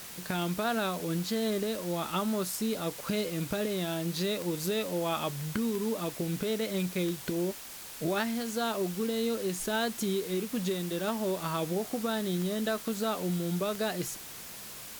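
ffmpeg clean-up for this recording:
-af "adeclick=t=4,afftdn=nr=30:nf=-44"

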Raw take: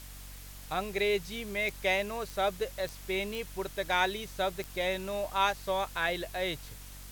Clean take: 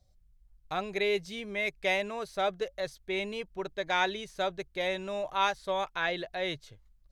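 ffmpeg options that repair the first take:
-af "adeclick=t=4,bandreject=f=47.2:t=h:w=4,bandreject=f=94.4:t=h:w=4,bandreject=f=141.6:t=h:w=4,bandreject=f=188.8:t=h:w=4,bandreject=f=236:t=h:w=4,bandreject=f=283.2:t=h:w=4,afwtdn=0.0032"

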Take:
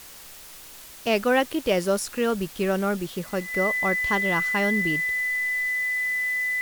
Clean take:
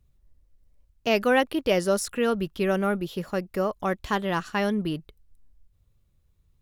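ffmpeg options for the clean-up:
-af "bandreject=f=2k:w=30,afwtdn=0.0063"

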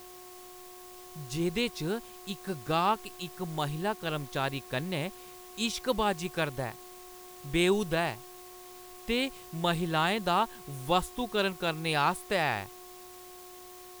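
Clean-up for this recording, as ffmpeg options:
-af "bandreject=f=362.9:t=h:w=4,bandreject=f=725.8:t=h:w=4,bandreject=f=1.0887k:t=h:w=4,afwtdn=0.0025"

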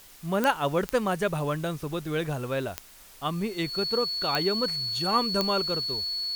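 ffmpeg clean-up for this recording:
-af "adeclick=t=4,bandreject=f=4.4k:w=30,afwtdn=0.0028"

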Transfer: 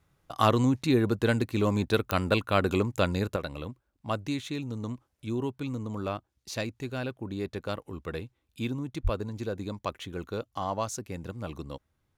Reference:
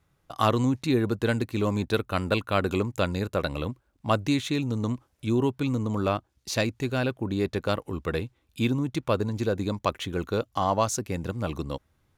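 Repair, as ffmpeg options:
-filter_complex "[0:a]adeclick=t=4,asplit=3[a][b][c];[a]afade=t=out:st=9.03:d=0.02[d];[b]highpass=f=140:w=0.5412,highpass=f=140:w=1.3066,afade=t=in:st=9.03:d=0.02,afade=t=out:st=9.15:d=0.02[e];[c]afade=t=in:st=9.15:d=0.02[f];[d][e][f]amix=inputs=3:normalize=0,asetnsamples=n=441:p=0,asendcmd='3.36 volume volume 7dB',volume=0dB"

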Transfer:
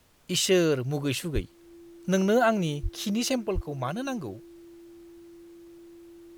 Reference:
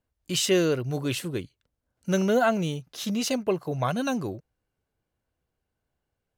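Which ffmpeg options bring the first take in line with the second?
-filter_complex "[0:a]bandreject=f=340:w=30,asplit=3[a][b][c];[a]afade=t=out:st=1.34:d=0.02[d];[b]highpass=f=140:w=0.5412,highpass=f=140:w=1.3066,afade=t=in:st=1.34:d=0.02,afade=t=out:st=1.46:d=0.02[e];[c]afade=t=in:st=1.46:d=0.02[f];[d][e][f]amix=inputs=3:normalize=0,asplit=3[g][h][i];[g]afade=t=out:st=2.82:d=0.02[j];[h]highpass=f=140:w=0.5412,highpass=f=140:w=1.3066,afade=t=in:st=2.82:d=0.02,afade=t=out:st=2.94:d=0.02[k];[i]afade=t=in:st=2.94:d=0.02[l];[j][k][l]amix=inputs=3:normalize=0,asplit=3[m][n][o];[m]afade=t=out:st=3.54:d=0.02[p];[n]highpass=f=140:w=0.5412,highpass=f=140:w=1.3066,afade=t=in:st=3.54:d=0.02,afade=t=out:st=3.66:d=0.02[q];[o]afade=t=in:st=3.66:d=0.02[r];[p][q][r]amix=inputs=3:normalize=0,agate=range=-21dB:threshold=-41dB,asetnsamples=n=441:p=0,asendcmd='3.46 volume volume 4.5dB',volume=0dB"

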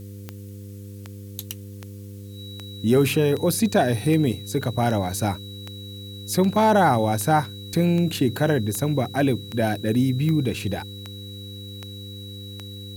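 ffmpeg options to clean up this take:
-af "adeclick=t=4,bandreject=f=100:t=h:w=4,bandreject=f=200:t=h:w=4,bandreject=f=300:t=h:w=4,bandreject=f=400:t=h:w=4,bandreject=f=500:t=h:w=4,bandreject=f=3.9k:w=30,agate=range=-21dB:threshold=-30dB"

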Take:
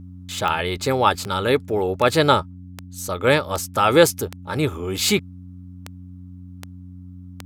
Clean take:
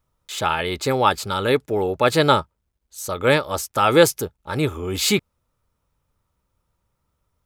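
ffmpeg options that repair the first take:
-af "adeclick=t=4,bandreject=f=90.6:t=h:w=4,bandreject=f=181.2:t=h:w=4,bandreject=f=271.8:t=h:w=4"

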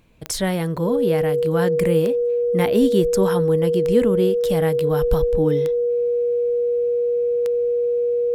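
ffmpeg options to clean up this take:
-af "adeclick=t=4,bandreject=f=480:w=30"

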